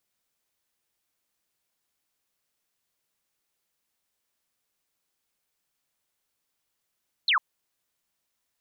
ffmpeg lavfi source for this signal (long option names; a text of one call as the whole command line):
ffmpeg -f lavfi -i "aevalsrc='0.112*clip(t/0.002,0,1)*clip((0.1-t)/0.002,0,1)*sin(2*PI*4400*0.1/log(960/4400)*(exp(log(960/4400)*t/0.1)-1))':duration=0.1:sample_rate=44100" out.wav